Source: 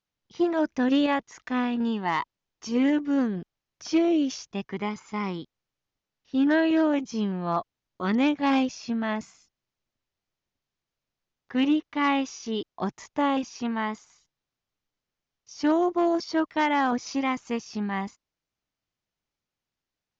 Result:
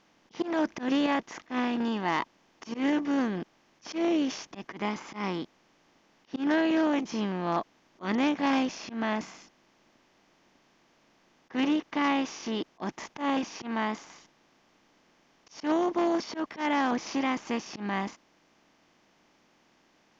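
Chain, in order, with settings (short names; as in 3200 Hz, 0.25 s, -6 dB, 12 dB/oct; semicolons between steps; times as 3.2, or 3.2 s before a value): per-bin compression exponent 0.6; auto swell 0.113 s; gain -5.5 dB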